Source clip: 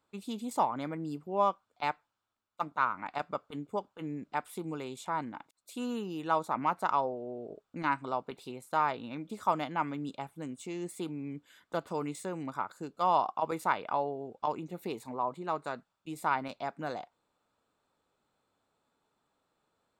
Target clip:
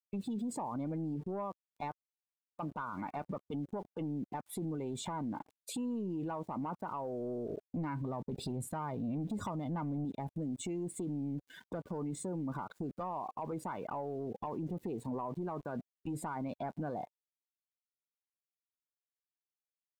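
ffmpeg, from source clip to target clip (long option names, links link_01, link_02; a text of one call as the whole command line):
ffmpeg -i in.wav -filter_complex "[0:a]lowshelf=frequency=410:gain=12,acompressor=threshold=-38dB:ratio=12,asettb=1/sr,asplit=3[link_01][link_02][link_03];[link_01]atrim=end=7.774[link_04];[link_02]atrim=start=7.77:end=10.05,asetpts=PTS-STARTPTS,afade=type=in:duration=0.004:curve=qsin,afade=type=out:start_time=2.276:duration=0.004:curve=qsin,bass=frequency=250:gain=7,treble=frequency=4000:gain=4[link_05];[link_03]atrim=start=10.046[link_06];[link_04][link_05]acrossfade=duration=0.004:curve1=hsin:curve2=qsin[link_07];[link_07][link_06]acrossfade=duration=0.004:curve1=qsin:curve2=hsin,aeval=exprs='val(0)*gte(abs(val(0)),0.00126)':channel_layout=same,bandreject=frequency=1300:width=9.4,asoftclip=type=tanh:threshold=-35.5dB,alimiter=level_in=20.5dB:limit=-24dB:level=0:latency=1:release=16,volume=-20.5dB,afftdn=noise_reduction=15:noise_floor=-59,volume=12.5dB" out.wav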